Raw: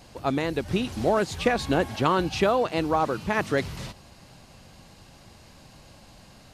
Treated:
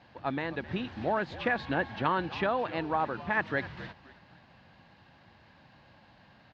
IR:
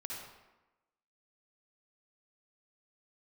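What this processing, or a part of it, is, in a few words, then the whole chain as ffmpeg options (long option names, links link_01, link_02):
frequency-shifting delay pedal into a guitar cabinet: -filter_complex "[0:a]asplit=4[link_01][link_02][link_03][link_04];[link_02]adelay=260,afreqshift=-81,volume=-16dB[link_05];[link_03]adelay=520,afreqshift=-162,volume=-25.4dB[link_06];[link_04]adelay=780,afreqshift=-243,volume=-34.7dB[link_07];[link_01][link_05][link_06][link_07]amix=inputs=4:normalize=0,highpass=84,equalizer=frequency=420:width_type=q:width=4:gain=-4,equalizer=frequency=890:width_type=q:width=4:gain=5,equalizer=frequency=1700:width_type=q:width=4:gain=9,lowpass=frequency=3900:width=0.5412,lowpass=frequency=3900:width=1.3066,volume=-7.5dB"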